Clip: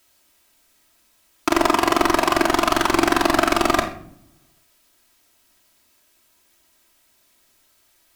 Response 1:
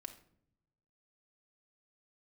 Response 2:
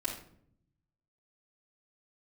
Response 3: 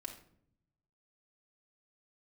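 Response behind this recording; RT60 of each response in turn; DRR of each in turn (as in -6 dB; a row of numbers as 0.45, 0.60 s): 3; 0.65, 0.60, 0.65 s; 4.5, -7.0, 0.0 dB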